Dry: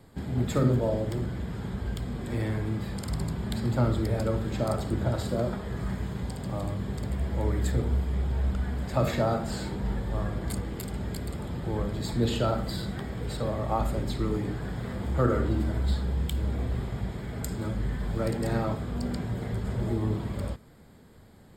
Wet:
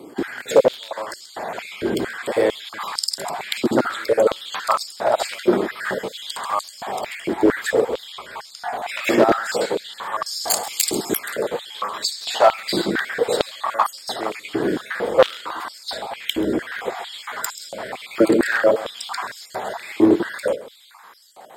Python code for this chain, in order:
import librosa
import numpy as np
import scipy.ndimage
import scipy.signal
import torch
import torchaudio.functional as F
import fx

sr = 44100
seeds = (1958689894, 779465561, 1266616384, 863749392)

p1 = fx.spec_dropout(x, sr, seeds[0], share_pct=27)
p2 = fx.high_shelf_res(p1, sr, hz=3600.0, db=13.5, q=1.5, at=(10.26, 11.19))
p3 = fx.rider(p2, sr, range_db=4, speed_s=0.5)
p4 = p2 + (p3 * librosa.db_to_amplitude(1.0))
p5 = 10.0 ** (-13.5 / 20.0) * (np.abs((p4 / 10.0 ** (-13.5 / 20.0) + 3.0) % 4.0 - 2.0) - 1.0)
p6 = p5 + 10.0 ** (-18.5 / 20.0) * np.pad(p5, (int(133 * sr / 1000.0), 0))[:len(p5)]
p7 = fx.filter_held_highpass(p6, sr, hz=4.4, low_hz=330.0, high_hz=5100.0)
y = p7 * librosa.db_to_amplitude(5.5)